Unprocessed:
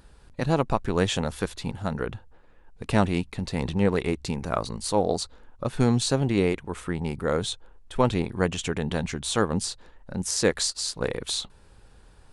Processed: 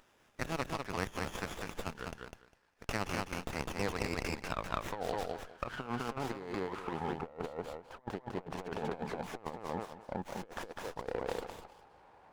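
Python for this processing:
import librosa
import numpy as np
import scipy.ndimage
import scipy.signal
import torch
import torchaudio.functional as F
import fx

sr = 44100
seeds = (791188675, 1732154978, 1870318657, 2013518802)

p1 = fx.filter_sweep_bandpass(x, sr, from_hz=4100.0, to_hz=820.0, start_s=3.19, end_s=7.1, q=2.3)
p2 = p1 + fx.echo_feedback(p1, sr, ms=202, feedback_pct=17, wet_db=-4.0, dry=0)
p3 = fx.over_compress(p2, sr, threshold_db=-41.0, ratio=-0.5)
p4 = fx.running_max(p3, sr, window=9)
y = p4 * 10.0 ** (3.0 / 20.0)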